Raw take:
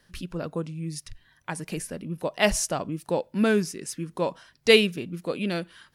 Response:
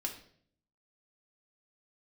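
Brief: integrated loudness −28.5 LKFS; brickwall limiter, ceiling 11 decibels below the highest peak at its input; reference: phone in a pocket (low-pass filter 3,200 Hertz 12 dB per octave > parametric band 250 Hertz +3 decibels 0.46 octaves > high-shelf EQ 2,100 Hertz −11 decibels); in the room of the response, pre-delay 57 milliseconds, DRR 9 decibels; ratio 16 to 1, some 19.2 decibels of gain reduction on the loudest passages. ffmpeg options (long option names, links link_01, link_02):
-filter_complex "[0:a]acompressor=threshold=-31dB:ratio=16,alimiter=level_in=5dB:limit=-24dB:level=0:latency=1,volume=-5dB,asplit=2[link_01][link_02];[1:a]atrim=start_sample=2205,adelay=57[link_03];[link_02][link_03]afir=irnorm=-1:irlink=0,volume=-10dB[link_04];[link_01][link_04]amix=inputs=2:normalize=0,lowpass=3200,equalizer=frequency=250:width_type=o:width=0.46:gain=3,highshelf=frequency=2100:gain=-11,volume=11.5dB"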